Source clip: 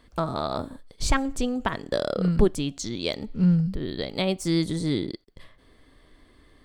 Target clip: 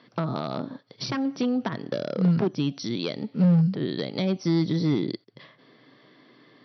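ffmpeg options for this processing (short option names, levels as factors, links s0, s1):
-filter_complex "[0:a]asoftclip=type=hard:threshold=0.106,acrossover=split=330[s0][s1];[s1]acompressor=threshold=0.02:ratio=4[s2];[s0][s2]amix=inputs=2:normalize=0,afftfilt=real='re*between(b*sr/4096,110,5900)':imag='im*between(b*sr/4096,110,5900)':win_size=4096:overlap=0.75,volume=1.58"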